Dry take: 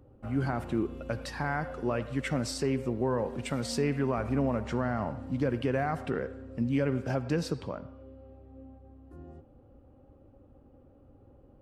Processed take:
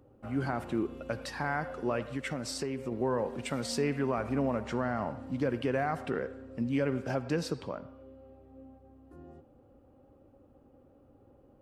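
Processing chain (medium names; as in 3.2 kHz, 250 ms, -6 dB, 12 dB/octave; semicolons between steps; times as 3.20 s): bass shelf 120 Hz -10 dB; 2.08–2.92 s: compression, threshold -31 dBFS, peak gain reduction 6 dB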